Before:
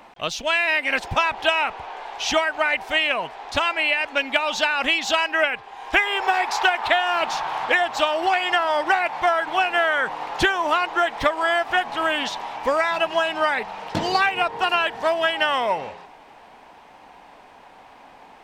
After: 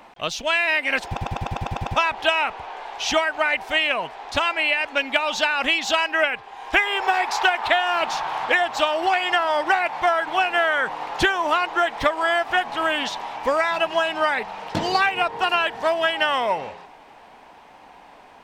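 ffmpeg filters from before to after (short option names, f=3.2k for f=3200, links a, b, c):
-filter_complex "[0:a]asplit=9[a][b][c][d][e][f][g][h][i];[a]atrim=end=1.172[j];[b]atrim=start=1.068:end=1.172[k];[c]atrim=start=1.068:end=1.172[l];[d]atrim=start=1.068:end=1.172[m];[e]atrim=start=1.068:end=1.172[n];[f]atrim=start=1.068:end=1.172[o];[g]atrim=start=1.068:end=1.172[p];[h]atrim=start=1.068:end=1.172[q];[i]atrim=start=1.068[r];[j][k]acrossfade=d=0.004:c1=hsin:c2=hsin[s];[s][l]acrossfade=d=0.004:c1=hsin:c2=hsin[t];[t][m]acrossfade=d=0.004:c1=hsin:c2=hsin[u];[u][n]acrossfade=d=0.004:c1=hsin:c2=hsin[v];[v][o]acrossfade=d=0.004:c1=hsin:c2=hsin[w];[w][p]acrossfade=d=0.004:c1=hsin:c2=hsin[x];[x][q]acrossfade=d=0.004:c1=hsin:c2=hsin[y];[y][r]acrossfade=d=0.004:c1=hsin:c2=hsin"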